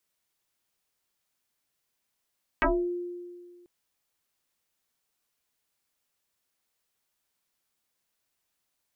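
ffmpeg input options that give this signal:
ffmpeg -f lavfi -i "aevalsrc='0.112*pow(10,-3*t/1.85)*sin(2*PI*352*t+7.3*pow(10,-3*t/0.31)*sin(2*PI*0.9*352*t))':duration=1.04:sample_rate=44100" out.wav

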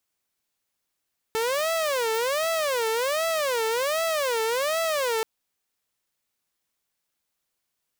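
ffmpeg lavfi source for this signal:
ffmpeg -f lavfi -i "aevalsrc='0.0944*(2*mod((551*t-108/(2*PI*1.3)*sin(2*PI*1.3*t)),1)-1)':duration=3.88:sample_rate=44100" out.wav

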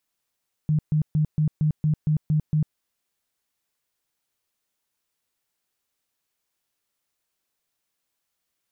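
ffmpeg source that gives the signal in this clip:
ffmpeg -f lavfi -i "aevalsrc='0.133*sin(2*PI*153*mod(t,0.23))*lt(mod(t,0.23),15/153)':duration=2.07:sample_rate=44100" out.wav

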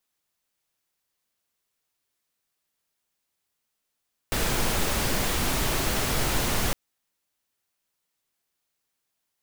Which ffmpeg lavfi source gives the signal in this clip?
ffmpeg -f lavfi -i "anoisesrc=color=pink:amplitude=0.288:duration=2.41:sample_rate=44100:seed=1" out.wav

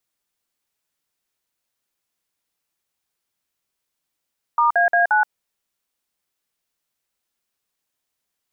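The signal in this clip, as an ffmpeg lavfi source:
ffmpeg -f lavfi -i "aevalsrc='0.158*clip(min(mod(t,0.176),0.125-mod(t,0.176))/0.002,0,1)*(eq(floor(t/0.176),0)*(sin(2*PI*941*mod(t,0.176))+sin(2*PI*1209*mod(t,0.176)))+eq(floor(t/0.176),1)*(sin(2*PI*697*mod(t,0.176))+sin(2*PI*1633*mod(t,0.176)))+eq(floor(t/0.176),2)*(sin(2*PI*697*mod(t,0.176))+sin(2*PI*1633*mod(t,0.176)))+eq(floor(t/0.176),3)*(sin(2*PI*852*mod(t,0.176))+sin(2*PI*1477*mod(t,0.176))))':duration=0.704:sample_rate=44100" out.wav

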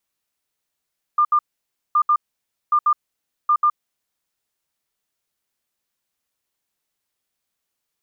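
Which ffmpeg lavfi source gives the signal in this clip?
ffmpeg -f lavfi -i "aevalsrc='0.237*sin(2*PI*1200*t)*clip(min(mod(mod(t,0.77),0.14),0.07-mod(mod(t,0.77),0.14))/0.005,0,1)*lt(mod(t,0.77),0.28)':duration=3.08:sample_rate=44100" out.wav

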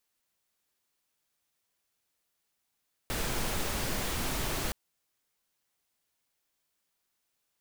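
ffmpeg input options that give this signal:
ffmpeg -f lavfi -i "anoisesrc=color=pink:amplitude=0.129:duration=1.62:sample_rate=44100:seed=1" out.wav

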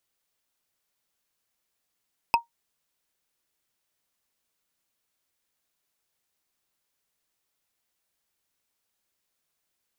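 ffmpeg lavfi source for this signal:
ffmpeg -f lavfi -i "aevalsrc='0.251*pow(10,-3*t/0.13)*sin(2*PI*934*t)+0.15*pow(10,-3*t/0.038)*sin(2*PI*2575*t)+0.0891*pow(10,-3*t/0.017)*sin(2*PI*5047.3*t)+0.0531*pow(10,-3*t/0.009)*sin(2*PI*8343.4*t)+0.0316*pow(10,-3*t/0.006)*sin(2*PI*12459.6*t)':duration=0.45:sample_rate=44100" out.wav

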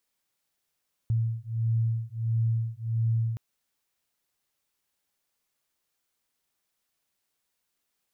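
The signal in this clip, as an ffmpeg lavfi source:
ffmpeg -f lavfi -i "aevalsrc='0.0422*(sin(2*PI*113*t)+sin(2*PI*114.5*t))':duration=2.27:sample_rate=44100" out.wav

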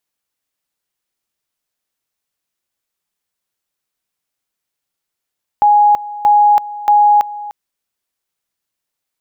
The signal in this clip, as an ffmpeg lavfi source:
ffmpeg -f lavfi -i "aevalsrc='pow(10,(-6-17.5*gte(mod(t,0.63),0.33))/20)*sin(2*PI*830*t)':duration=1.89:sample_rate=44100" out.wav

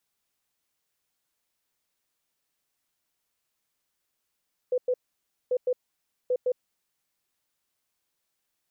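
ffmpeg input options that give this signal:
ffmpeg -f lavfi -i "aevalsrc='0.0841*sin(2*PI*501*t)*clip(min(mod(mod(t,0.79),0.16),0.06-mod(mod(t,0.79),0.16))/0.005,0,1)*lt(mod(t,0.79),0.32)':duration=2.37:sample_rate=44100" out.wav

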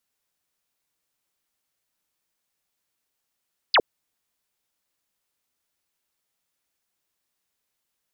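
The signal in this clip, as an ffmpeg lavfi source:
ffmpeg -f lavfi -i "aevalsrc='0.211*clip(t/0.002,0,1)*clip((0.06-t)/0.002,0,1)*sin(2*PI*5200*0.06/log(340/5200)*(exp(log(340/5200)*t/0.06)-1))':duration=0.06:sample_rate=44100" out.wav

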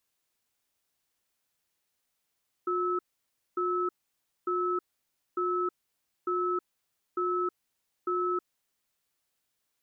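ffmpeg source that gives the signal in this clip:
ffmpeg -f lavfi -i "aevalsrc='0.0355*(sin(2*PI*359*t)+sin(2*PI*1300*t))*clip(min(mod(t,0.9),0.32-mod(t,0.9))/0.005,0,1)':duration=6.02:sample_rate=44100" out.wav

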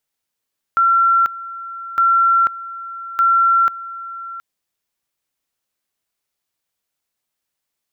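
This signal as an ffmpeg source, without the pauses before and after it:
ffmpeg -f lavfi -i "aevalsrc='pow(10,(-10.5-17*gte(mod(t,1.21),0.49))/20)*sin(2*PI*1360*t)':duration=3.63:sample_rate=44100" out.wav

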